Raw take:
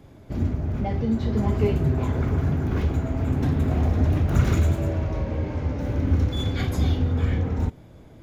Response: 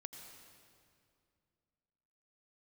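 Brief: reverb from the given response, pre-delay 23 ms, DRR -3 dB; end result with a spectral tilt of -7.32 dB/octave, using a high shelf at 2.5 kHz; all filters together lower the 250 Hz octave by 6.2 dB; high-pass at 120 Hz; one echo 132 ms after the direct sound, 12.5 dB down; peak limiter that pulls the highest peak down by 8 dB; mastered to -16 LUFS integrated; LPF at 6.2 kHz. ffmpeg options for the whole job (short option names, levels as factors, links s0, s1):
-filter_complex "[0:a]highpass=120,lowpass=6200,equalizer=f=250:t=o:g=-7.5,highshelf=f=2500:g=-5,alimiter=limit=0.0841:level=0:latency=1,aecho=1:1:132:0.237,asplit=2[s0][s1];[1:a]atrim=start_sample=2205,adelay=23[s2];[s1][s2]afir=irnorm=-1:irlink=0,volume=2.37[s3];[s0][s3]amix=inputs=2:normalize=0,volume=3.16"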